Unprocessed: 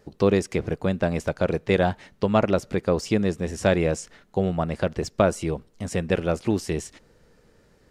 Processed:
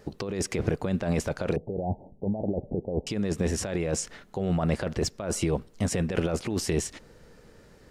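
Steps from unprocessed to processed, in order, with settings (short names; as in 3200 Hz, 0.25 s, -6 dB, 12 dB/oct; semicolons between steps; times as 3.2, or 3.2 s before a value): negative-ratio compressor -27 dBFS, ratio -1; 1.56–3.07 steep low-pass 830 Hz 72 dB/oct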